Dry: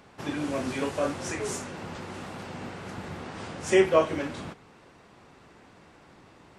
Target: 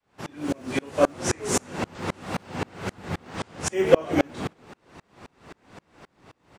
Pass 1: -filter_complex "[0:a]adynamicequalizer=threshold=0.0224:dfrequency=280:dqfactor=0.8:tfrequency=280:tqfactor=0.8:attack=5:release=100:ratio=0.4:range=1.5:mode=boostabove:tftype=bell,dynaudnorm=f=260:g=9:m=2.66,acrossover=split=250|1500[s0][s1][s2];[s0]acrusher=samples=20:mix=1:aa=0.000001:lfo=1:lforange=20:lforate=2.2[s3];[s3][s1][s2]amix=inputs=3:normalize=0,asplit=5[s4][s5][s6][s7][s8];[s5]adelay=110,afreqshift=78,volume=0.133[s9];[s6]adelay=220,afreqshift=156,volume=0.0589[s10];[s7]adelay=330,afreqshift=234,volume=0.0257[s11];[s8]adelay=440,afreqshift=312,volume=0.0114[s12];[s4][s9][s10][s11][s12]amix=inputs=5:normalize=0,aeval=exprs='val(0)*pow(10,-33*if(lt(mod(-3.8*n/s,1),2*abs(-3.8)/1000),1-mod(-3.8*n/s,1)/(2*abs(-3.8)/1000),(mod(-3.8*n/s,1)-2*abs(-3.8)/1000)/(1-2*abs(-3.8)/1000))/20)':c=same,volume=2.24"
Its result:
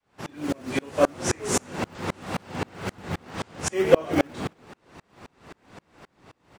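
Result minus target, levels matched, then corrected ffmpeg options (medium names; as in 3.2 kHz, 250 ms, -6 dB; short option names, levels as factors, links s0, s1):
decimation with a swept rate: distortion +13 dB
-filter_complex "[0:a]adynamicequalizer=threshold=0.0224:dfrequency=280:dqfactor=0.8:tfrequency=280:tqfactor=0.8:attack=5:release=100:ratio=0.4:range=1.5:mode=boostabove:tftype=bell,dynaudnorm=f=260:g=9:m=2.66,acrossover=split=250|1500[s0][s1][s2];[s0]acrusher=samples=5:mix=1:aa=0.000001:lfo=1:lforange=5:lforate=2.2[s3];[s3][s1][s2]amix=inputs=3:normalize=0,asplit=5[s4][s5][s6][s7][s8];[s5]adelay=110,afreqshift=78,volume=0.133[s9];[s6]adelay=220,afreqshift=156,volume=0.0589[s10];[s7]adelay=330,afreqshift=234,volume=0.0257[s11];[s8]adelay=440,afreqshift=312,volume=0.0114[s12];[s4][s9][s10][s11][s12]amix=inputs=5:normalize=0,aeval=exprs='val(0)*pow(10,-33*if(lt(mod(-3.8*n/s,1),2*abs(-3.8)/1000),1-mod(-3.8*n/s,1)/(2*abs(-3.8)/1000),(mod(-3.8*n/s,1)-2*abs(-3.8)/1000)/(1-2*abs(-3.8)/1000))/20)':c=same,volume=2.24"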